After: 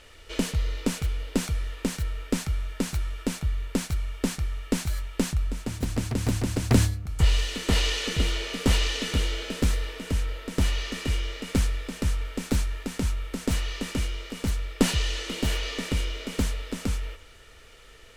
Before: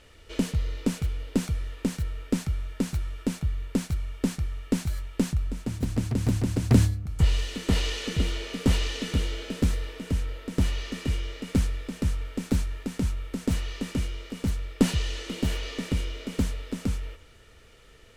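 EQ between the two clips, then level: peaking EQ 150 Hz -7.5 dB 2.9 oct; +5.0 dB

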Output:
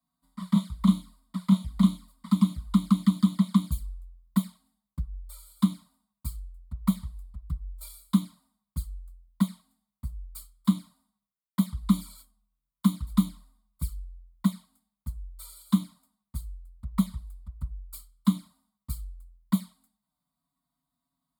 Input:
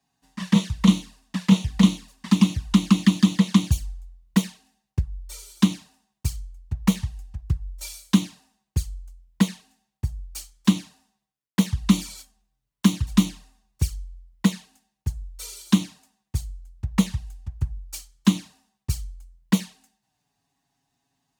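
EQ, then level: static phaser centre 540 Hz, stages 8; static phaser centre 1.7 kHz, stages 6; -1.5 dB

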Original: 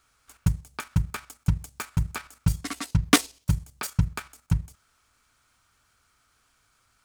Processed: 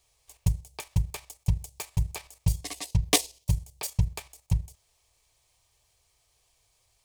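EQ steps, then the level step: static phaser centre 580 Hz, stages 4; +1.0 dB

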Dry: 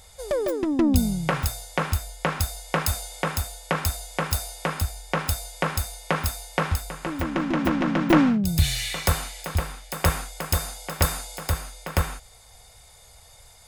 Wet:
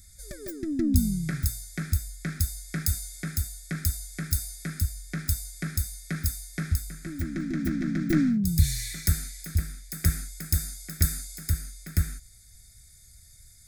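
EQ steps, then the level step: Butterworth band-stop 950 Hz, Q 0.62; static phaser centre 1.2 kHz, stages 4; 0.0 dB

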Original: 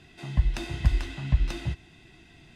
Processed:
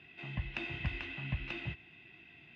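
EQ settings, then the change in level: high-pass 100 Hz 12 dB/octave; resonant low-pass 2.6 kHz, resonance Q 3.7; -8.0 dB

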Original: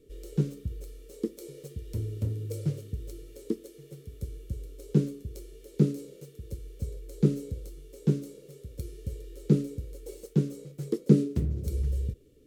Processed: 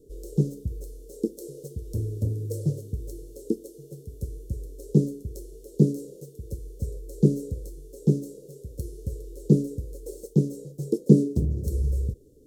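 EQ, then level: Chebyshev band-stop 570–6100 Hz, order 2; peaking EQ 2.4 kHz +3.5 dB 0.86 oct; +4.5 dB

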